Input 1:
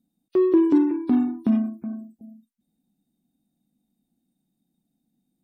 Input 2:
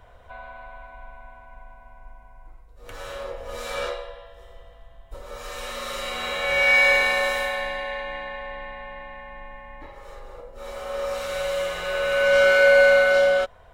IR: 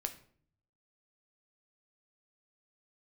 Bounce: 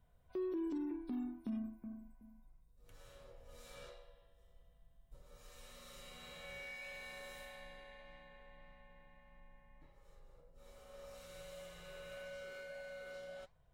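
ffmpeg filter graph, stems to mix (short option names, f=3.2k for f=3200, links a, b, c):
-filter_complex "[0:a]lowshelf=f=370:g=-10,volume=-6dB[a];[1:a]equalizer=f=150:t=o:w=0.36:g=14,acompressor=threshold=-20dB:ratio=12,flanger=delay=3.8:depth=8:regen=-87:speed=1.7:shape=sinusoidal,volume=-13dB[b];[a][b]amix=inputs=2:normalize=0,equalizer=f=1.1k:w=0.31:g=-10.5,alimiter=level_in=9.5dB:limit=-24dB:level=0:latency=1:release=71,volume=-9.5dB"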